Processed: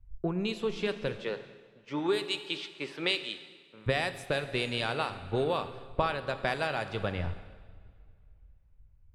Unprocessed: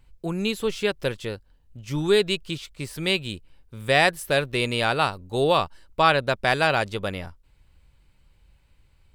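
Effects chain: 1.22–3.86 HPF 390 Hz 12 dB/oct; low-pass opened by the level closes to 2000 Hz, open at -16 dBFS; compressor 20:1, threshold -33 dBFS, peak gain reduction 21 dB; plate-style reverb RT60 3.6 s, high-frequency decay 0.9×, DRR 8 dB; three-band expander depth 70%; gain +5.5 dB

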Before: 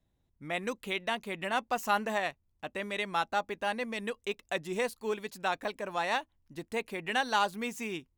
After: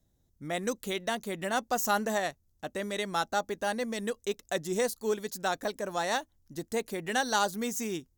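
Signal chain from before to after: fifteen-band EQ 1000 Hz -6 dB, 2500 Hz -11 dB, 6300 Hz +7 dB, 16000 Hz +9 dB; gain +4 dB

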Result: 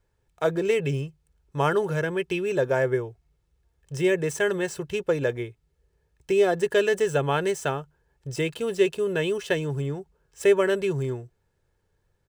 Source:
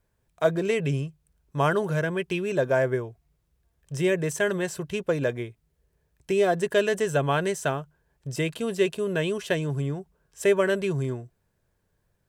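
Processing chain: median filter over 3 samples; comb 2.3 ms, depth 39%

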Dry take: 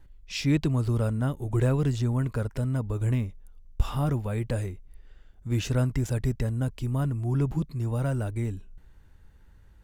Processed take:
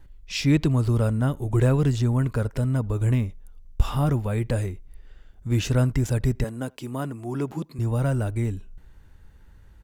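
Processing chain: 6.44–7.79 HPF 250 Hz 12 dB/oct; speakerphone echo 80 ms, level -28 dB; gain +4 dB

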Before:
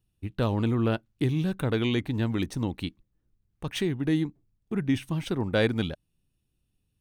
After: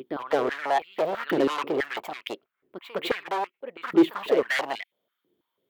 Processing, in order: band shelf 5800 Hz -15.5 dB; reverse echo 0.255 s -14.5 dB; overloaded stage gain 29 dB; varispeed +23%; stepped high-pass 6.1 Hz 340–2300 Hz; gain +6 dB

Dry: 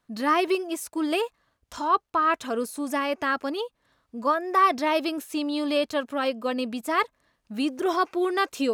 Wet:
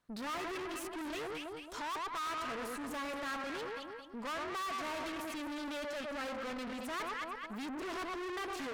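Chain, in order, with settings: echo with dull and thin repeats by turns 0.11 s, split 1200 Hz, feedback 65%, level -6 dB; tube stage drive 38 dB, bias 0.6; dynamic EQ 1700 Hz, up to +5 dB, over -51 dBFS, Q 0.76; Doppler distortion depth 0.11 ms; gain -2.5 dB

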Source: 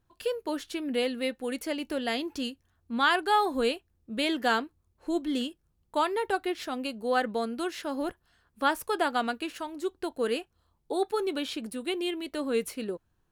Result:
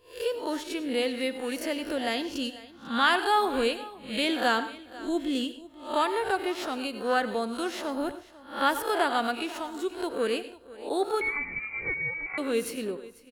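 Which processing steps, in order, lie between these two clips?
spectral swells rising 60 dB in 0.38 s; echo 0.494 s -19 dB; 11.21–12.38 inverted band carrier 2600 Hz; reverb RT60 0.35 s, pre-delay 82 ms, DRR 12.5 dB

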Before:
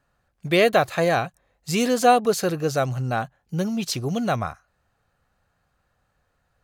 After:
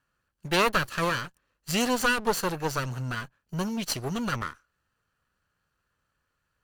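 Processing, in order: minimum comb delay 0.67 ms; low shelf 240 Hz -7 dB; in parallel at -6 dB: crossover distortion -42 dBFS; on the sum: gain -4 dB

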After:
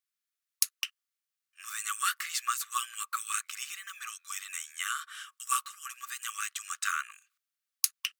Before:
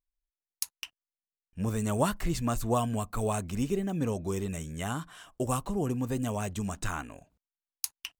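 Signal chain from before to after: brick-wall FIR high-pass 1100 Hz; gain +6.5 dB

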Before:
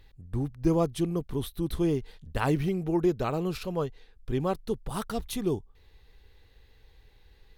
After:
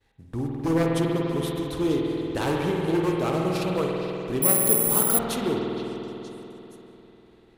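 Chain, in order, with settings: CVSD 64 kbps; HPF 230 Hz 6 dB/oct; expander -59 dBFS; in parallel at -1 dB: compressor 6:1, threshold -38 dBFS, peak gain reduction 15 dB; on the sum: wavefolder -21 dBFS; on a send: delay with a stepping band-pass 0.469 s, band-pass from 3300 Hz, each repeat 0.7 oct, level -8 dB; on the sum: spring tank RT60 3.8 s, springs 49 ms, chirp 20 ms, DRR -1.5 dB; 4.42–5.19 careless resampling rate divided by 4×, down filtered, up zero stuff; mismatched tape noise reduction decoder only; gain +1 dB

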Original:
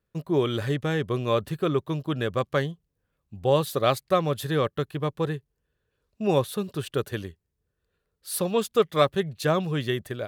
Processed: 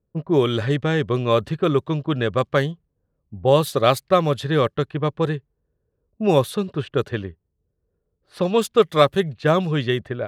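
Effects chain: low-pass opened by the level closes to 570 Hz, open at -20 dBFS; gain +5.5 dB

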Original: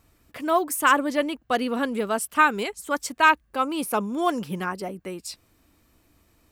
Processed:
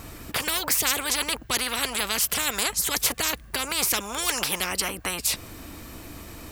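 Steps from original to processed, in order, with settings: spectral compressor 10:1

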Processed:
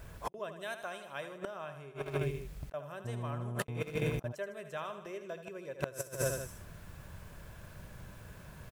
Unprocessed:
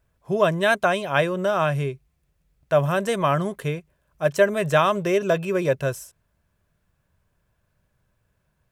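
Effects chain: on a send: feedback echo 78 ms, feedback 57%, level -10 dB; on the sum: dynamic EQ 150 Hz, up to -6 dB, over -38 dBFS, Q 0.97; flipped gate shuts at -19 dBFS, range -41 dB; 0.56–1.38 high shelf 4500 Hz +8 dB; 3.04–4.31 buzz 120 Hz, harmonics 9, -58 dBFS -9 dB/oct; in parallel at -10 dB: sample gate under -39 dBFS; on the sum: negative-ratio compressor -48 dBFS, ratio -0.5; gain +12 dB

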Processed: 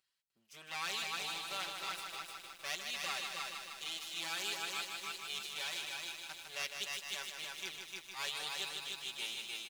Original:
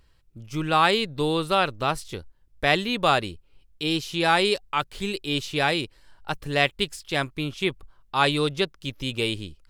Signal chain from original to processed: minimum comb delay 5.2 ms; LPF 3700 Hz 6 dB/oct; differentiator; on a send: echo 0.302 s -4 dB; on the sum: lo-fi delay 0.154 s, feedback 80%, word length 9-bit, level -5.5 dB; gain -4.5 dB

